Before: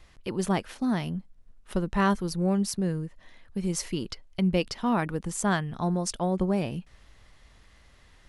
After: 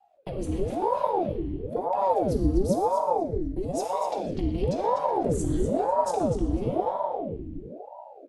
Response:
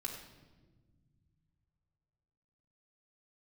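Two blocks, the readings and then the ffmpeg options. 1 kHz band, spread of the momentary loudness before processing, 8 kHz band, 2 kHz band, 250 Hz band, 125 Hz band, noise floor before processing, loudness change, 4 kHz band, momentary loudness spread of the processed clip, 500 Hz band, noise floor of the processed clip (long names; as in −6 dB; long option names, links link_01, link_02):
+7.0 dB, 9 LU, −7.0 dB, −14.5 dB, −2.0 dB, −1.0 dB, −57 dBFS, +1.5 dB, −9.5 dB, 11 LU, +6.5 dB, −47 dBFS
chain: -filter_complex "[0:a]equalizer=frequency=83:width=0.32:gain=9.5,agate=range=-21dB:threshold=-39dB:ratio=16:detection=peak,lowshelf=frequency=140:gain=7,bandreject=frequency=5100:width=6.8,acrossover=split=300|3000[link_01][link_02][link_03];[link_02]acompressor=threshold=-33dB:ratio=6[link_04];[link_01][link_04][link_03]amix=inputs=3:normalize=0,acrossover=split=710|2100[link_05][link_06][link_07];[link_06]alimiter=level_in=14.5dB:limit=-24dB:level=0:latency=1,volume=-14.5dB[link_08];[link_05][link_08][link_07]amix=inputs=3:normalize=0,acompressor=threshold=-31dB:ratio=1.5,asoftclip=type=tanh:threshold=-17.5dB,asplit=2[link_09][link_10];[link_10]adelay=248,lowpass=frequency=4200:poles=1,volume=-4dB,asplit=2[link_11][link_12];[link_12]adelay=248,lowpass=frequency=4200:poles=1,volume=0.31,asplit=2[link_13][link_14];[link_14]adelay=248,lowpass=frequency=4200:poles=1,volume=0.31,asplit=2[link_15][link_16];[link_16]adelay=248,lowpass=frequency=4200:poles=1,volume=0.31[link_17];[link_09][link_11][link_13][link_15][link_17]amix=inputs=5:normalize=0[link_18];[1:a]atrim=start_sample=2205,asetrate=33957,aresample=44100[link_19];[link_18][link_19]afir=irnorm=-1:irlink=0,aeval=exprs='val(0)*sin(2*PI*450*n/s+450*0.75/1*sin(2*PI*1*n/s))':channel_layout=same"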